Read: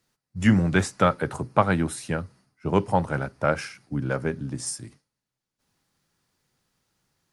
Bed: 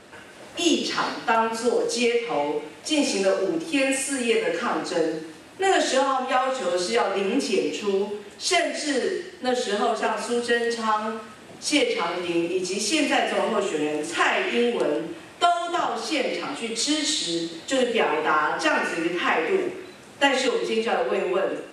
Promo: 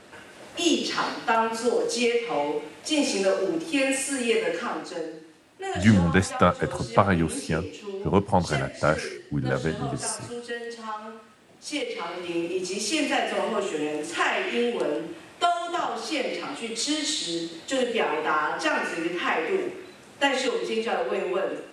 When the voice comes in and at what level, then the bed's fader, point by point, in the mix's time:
5.40 s, +0.5 dB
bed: 0:04.46 −1.5 dB
0:05.12 −11 dB
0:11.52 −11 dB
0:12.54 −3 dB

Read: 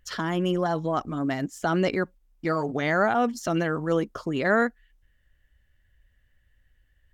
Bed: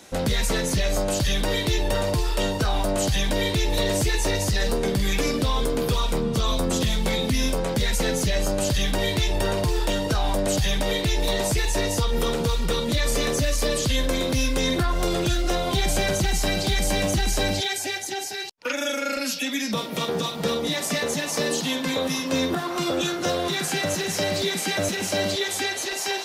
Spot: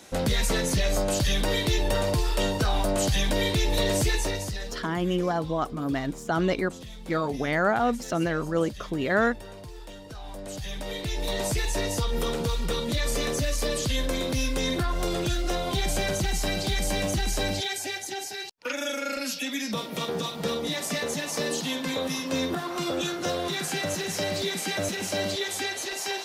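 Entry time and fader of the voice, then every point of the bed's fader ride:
4.65 s, −1.0 dB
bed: 0:04.11 −1.5 dB
0:04.99 −19 dB
0:10.05 −19 dB
0:11.45 −4 dB

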